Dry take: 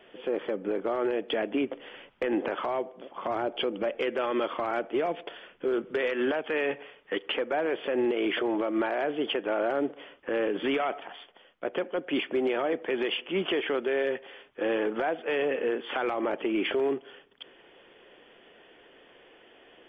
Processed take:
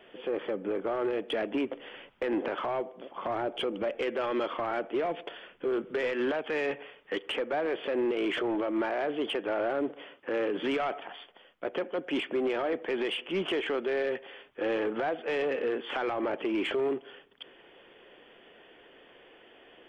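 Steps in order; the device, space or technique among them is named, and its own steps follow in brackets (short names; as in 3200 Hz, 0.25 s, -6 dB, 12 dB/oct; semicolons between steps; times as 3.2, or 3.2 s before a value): saturation between pre-emphasis and de-emphasis (high shelf 3300 Hz +12 dB; soft clip -22 dBFS, distortion -17 dB; high shelf 3300 Hz -12 dB); 10.03–10.67 HPF 110 Hz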